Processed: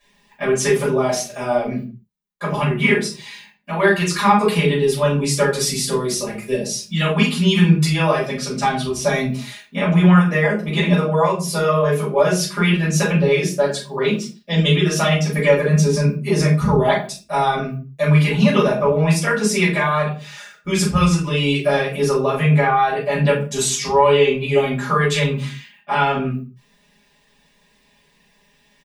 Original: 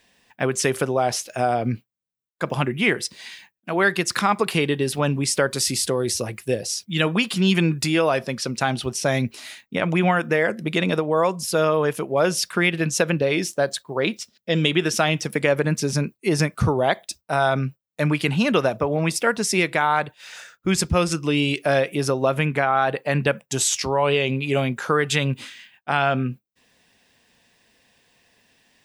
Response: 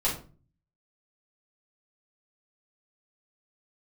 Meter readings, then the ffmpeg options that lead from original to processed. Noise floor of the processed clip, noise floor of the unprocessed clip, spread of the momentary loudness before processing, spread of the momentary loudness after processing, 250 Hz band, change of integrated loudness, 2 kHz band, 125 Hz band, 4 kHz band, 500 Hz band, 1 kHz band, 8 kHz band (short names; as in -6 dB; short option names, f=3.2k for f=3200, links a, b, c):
-59 dBFS, -76 dBFS, 7 LU, 9 LU, +5.0 dB, +4.0 dB, +2.0 dB, +7.0 dB, +2.0 dB, +4.0 dB, +4.0 dB, +1.0 dB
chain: -filter_complex "[0:a]aecho=1:1:4.9:0.91[a];[1:a]atrim=start_sample=2205,afade=t=out:st=0.35:d=0.01,atrim=end_sample=15876[b];[a][b]afir=irnorm=-1:irlink=0,volume=-8.5dB"